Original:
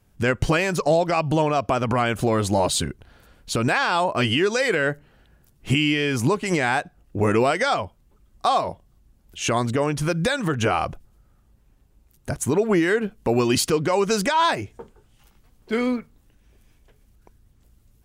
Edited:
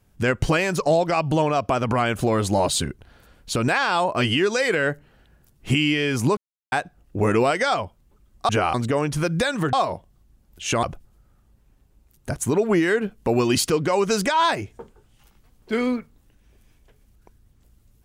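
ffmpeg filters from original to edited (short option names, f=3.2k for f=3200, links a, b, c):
-filter_complex "[0:a]asplit=7[a][b][c][d][e][f][g];[a]atrim=end=6.37,asetpts=PTS-STARTPTS,afade=t=out:st=6.366:d=0.004:c=hsin[h];[b]atrim=start=6.37:end=6.72,asetpts=PTS-STARTPTS,volume=0[i];[c]atrim=start=6.72:end=8.492,asetpts=PTS-STARTPTS,afade=t=in:d=0.004:c=hsin[j];[d]atrim=start=10.578:end=10.832[k];[e]atrim=start=9.588:end=10.582[l];[f]atrim=start=8.488:end=9.592[m];[g]atrim=start=10.828[n];[h][i][j]concat=n=3:v=0:a=1[o];[o][k]acrossfade=d=0.004:c1=hsin:c2=hsin[p];[p][l]acrossfade=d=0.004:c1=hsin:c2=hsin[q];[q][m]acrossfade=d=0.004:c1=hsin:c2=hsin[r];[r][n]acrossfade=d=0.004:c1=hsin:c2=hsin"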